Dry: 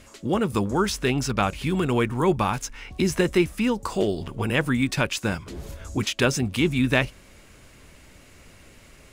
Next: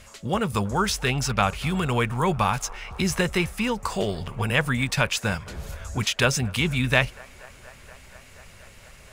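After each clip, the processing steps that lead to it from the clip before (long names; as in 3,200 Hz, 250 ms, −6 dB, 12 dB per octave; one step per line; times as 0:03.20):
parametric band 310 Hz −13.5 dB 0.75 octaves
delay with a band-pass on its return 238 ms, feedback 84%, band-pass 930 Hz, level −23 dB
level +2.5 dB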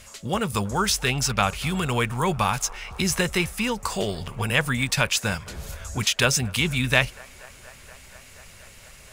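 high-shelf EQ 3,300 Hz +7 dB
level −1 dB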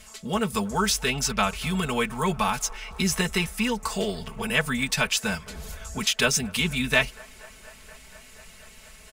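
comb filter 4.6 ms, depth 78%
level −3.5 dB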